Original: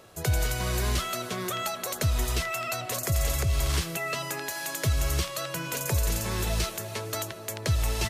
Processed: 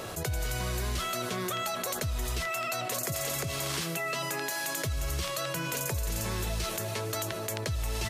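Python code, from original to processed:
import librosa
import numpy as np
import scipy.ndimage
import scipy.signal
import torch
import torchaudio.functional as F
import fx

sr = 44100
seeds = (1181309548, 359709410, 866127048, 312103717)

y = fx.highpass(x, sr, hz=130.0, slope=24, at=(2.46, 4.64))
y = fx.env_flatten(y, sr, amount_pct=70)
y = y * librosa.db_to_amplitude(-8.5)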